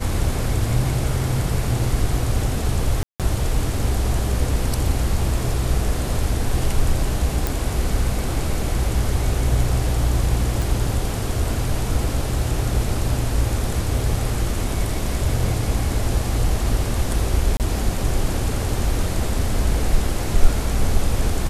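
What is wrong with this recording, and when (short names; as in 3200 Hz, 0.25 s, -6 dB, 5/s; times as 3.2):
3.03–3.2 gap 0.167 s
7.47 pop
10.62 pop
17.57–17.6 gap 28 ms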